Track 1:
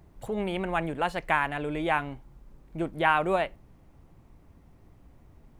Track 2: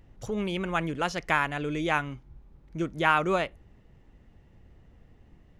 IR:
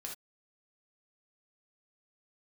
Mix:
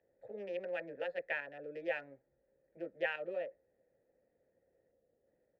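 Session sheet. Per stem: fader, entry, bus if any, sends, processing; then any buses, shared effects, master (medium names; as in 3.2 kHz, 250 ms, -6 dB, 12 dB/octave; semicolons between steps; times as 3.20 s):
+3.0 dB, 0.00 s, no send, local Wiener filter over 15 samples; high-pass 1.1 kHz 6 dB/octave; square tremolo 0.57 Hz, depth 65%, duty 80%
-2.0 dB, 15 ms, polarity flipped, no send, steep low-pass 1.3 kHz 36 dB/octave; peak limiter -21.5 dBFS, peak gain reduction 8 dB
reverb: none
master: vowel filter e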